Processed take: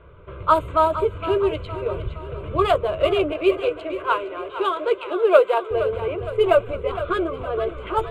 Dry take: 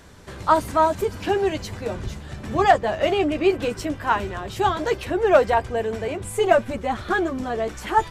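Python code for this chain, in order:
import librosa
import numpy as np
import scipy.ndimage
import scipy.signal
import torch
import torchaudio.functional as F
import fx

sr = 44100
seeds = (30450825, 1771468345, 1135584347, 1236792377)

y = fx.wiener(x, sr, points=9)
y = fx.highpass(y, sr, hz=320.0, slope=24, at=(3.32, 5.71))
y = fx.env_lowpass(y, sr, base_hz=2300.0, full_db=-14.5)
y = fx.fixed_phaser(y, sr, hz=1200.0, stages=8)
y = fx.echo_warbled(y, sr, ms=464, feedback_pct=50, rate_hz=2.8, cents=59, wet_db=-12)
y = F.gain(torch.from_numpy(y), 3.5).numpy()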